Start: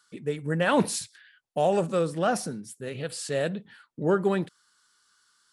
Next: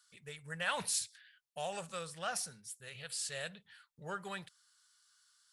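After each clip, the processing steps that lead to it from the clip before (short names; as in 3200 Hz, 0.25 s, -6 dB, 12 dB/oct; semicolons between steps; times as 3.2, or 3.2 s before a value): passive tone stack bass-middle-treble 10-0-10; gain -2 dB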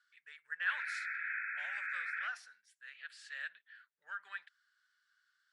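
painted sound noise, 0.7–2.28, 1300–2600 Hz -41 dBFS; ladder band-pass 1800 Hz, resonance 65%; gain +6 dB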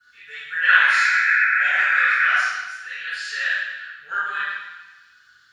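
reverb RT60 1.0 s, pre-delay 3 ms, DRR -20 dB; gain +2 dB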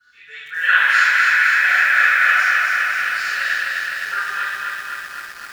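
lo-fi delay 0.256 s, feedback 80%, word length 7-bit, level -3 dB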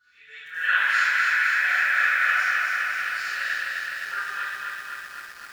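reverse echo 91 ms -15.5 dB; gain -7 dB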